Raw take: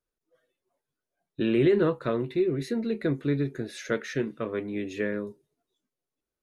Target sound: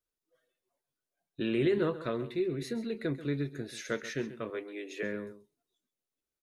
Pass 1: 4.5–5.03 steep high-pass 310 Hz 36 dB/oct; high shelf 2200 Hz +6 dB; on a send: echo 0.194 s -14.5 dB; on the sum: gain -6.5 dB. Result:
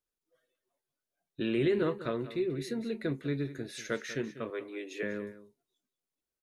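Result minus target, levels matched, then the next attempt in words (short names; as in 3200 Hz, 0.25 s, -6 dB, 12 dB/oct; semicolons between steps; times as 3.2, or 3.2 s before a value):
echo 60 ms late
4.5–5.03 steep high-pass 310 Hz 36 dB/oct; high shelf 2200 Hz +6 dB; on a send: echo 0.134 s -14.5 dB; on the sum: gain -6.5 dB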